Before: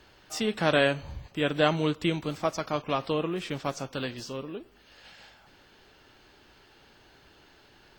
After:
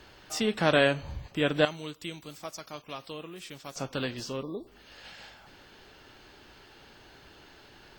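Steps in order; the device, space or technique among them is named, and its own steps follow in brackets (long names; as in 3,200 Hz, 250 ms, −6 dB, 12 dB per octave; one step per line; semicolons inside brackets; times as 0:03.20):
parallel compression (in parallel at −5.5 dB: downward compressor, threshold −45 dBFS, peak gain reduction 24.5 dB)
0:01.65–0:03.76: on the sum: first-order pre-emphasis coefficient 0.8
0:04.43–0:04.67: time-frequency box erased 1,200–3,400 Hz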